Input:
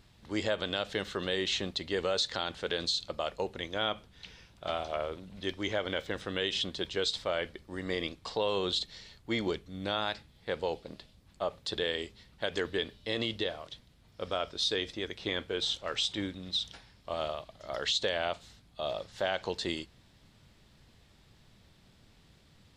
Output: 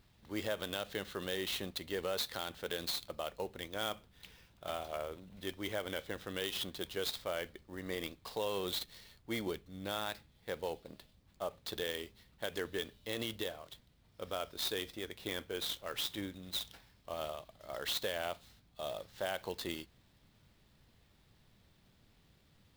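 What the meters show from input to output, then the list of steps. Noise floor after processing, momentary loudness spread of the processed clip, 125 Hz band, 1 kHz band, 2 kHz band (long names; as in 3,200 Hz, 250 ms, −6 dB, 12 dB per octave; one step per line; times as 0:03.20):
−68 dBFS, 11 LU, −6.0 dB, −6.0 dB, −6.0 dB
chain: converter with an unsteady clock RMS 0.022 ms
level −6 dB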